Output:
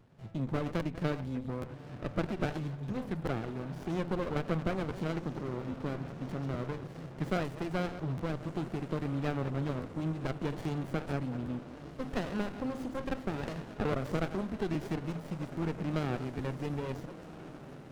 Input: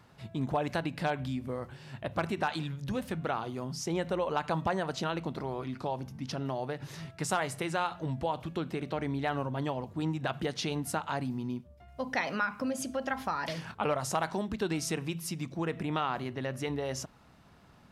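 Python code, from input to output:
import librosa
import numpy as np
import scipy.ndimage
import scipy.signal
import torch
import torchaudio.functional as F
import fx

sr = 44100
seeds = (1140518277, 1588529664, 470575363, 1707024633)

y = fx.reverse_delay(x, sr, ms=125, wet_db=-11.0)
y = scipy.signal.sosfilt(scipy.signal.butter(4, 64.0, 'highpass', fs=sr, output='sos'), y)
y = fx.high_shelf(y, sr, hz=4200.0, db=-8.0)
y = fx.echo_diffused(y, sr, ms=1406, feedback_pct=63, wet_db=-13.0)
y = fx.buffer_crackle(y, sr, first_s=0.79, period_s=0.82, block=512, kind='repeat')
y = fx.running_max(y, sr, window=33)
y = F.gain(torch.from_numpy(y), -1.5).numpy()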